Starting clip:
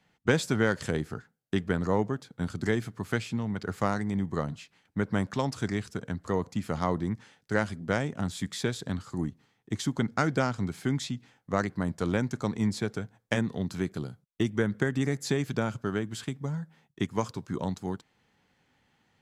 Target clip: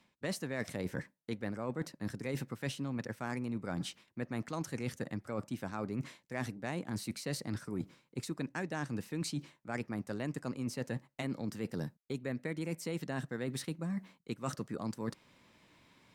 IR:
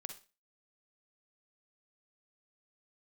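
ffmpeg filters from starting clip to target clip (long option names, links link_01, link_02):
-af "areverse,acompressor=threshold=-39dB:ratio=10,areverse,asetrate=52479,aresample=44100,volume=5dB"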